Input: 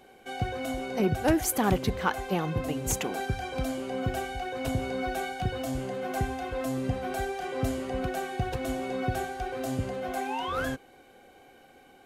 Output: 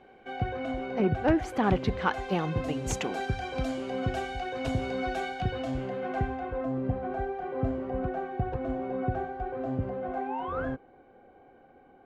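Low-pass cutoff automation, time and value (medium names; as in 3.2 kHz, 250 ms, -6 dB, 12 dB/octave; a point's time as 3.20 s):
1.42 s 2.4 kHz
2.40 s 5.7 kHz
5.11 s 5.7 kHz
6.19 s 2.2 kHz
6.69 s 1.2 kHz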